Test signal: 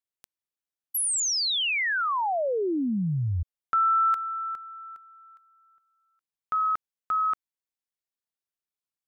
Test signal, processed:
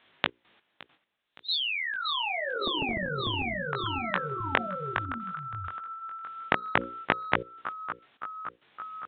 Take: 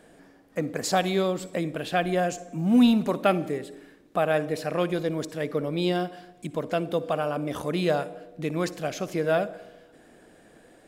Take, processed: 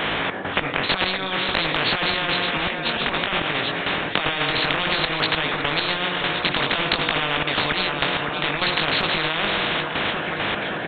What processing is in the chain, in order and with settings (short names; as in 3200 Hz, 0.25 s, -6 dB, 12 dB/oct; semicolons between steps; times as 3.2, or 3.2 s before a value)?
HPF 120 Hz 12 dB/oct; bell 1700 Hz +2 dB 0.51 oct; notches 60/120/180/240/300/360/420/480/540 Hz; negative-ratio compressor -30 dBFS, ratio -0.5; chorus 0.55 Hz, delay 18.5 ms, depth 3.6 ms; step gate "xx.x..x...xxxxxx" 101 bpm -12 dB; feedback echo 0.566 s, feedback 54%, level -21 dB; downsampling 8000 Hz; maximiser +24.5 dB; spectral compressor 10:1; gain -1 dB